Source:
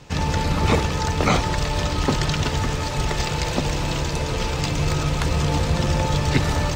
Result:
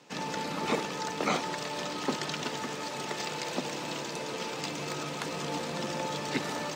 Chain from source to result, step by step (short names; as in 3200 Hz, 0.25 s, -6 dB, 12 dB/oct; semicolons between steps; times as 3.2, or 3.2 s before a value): HPF 200 Hz 24 dB/oct; gain -8.5 dB